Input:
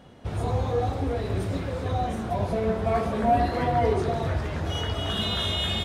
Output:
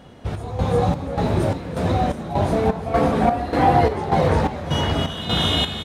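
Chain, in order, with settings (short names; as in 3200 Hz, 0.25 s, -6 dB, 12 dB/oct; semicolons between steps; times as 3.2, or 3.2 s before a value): frequency-shifting echo 0.348 s, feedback 46%, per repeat +73 Hz, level -3 dB; chopper 1.7 Hz, depth 65%, duty 60%; gain +5.5 dB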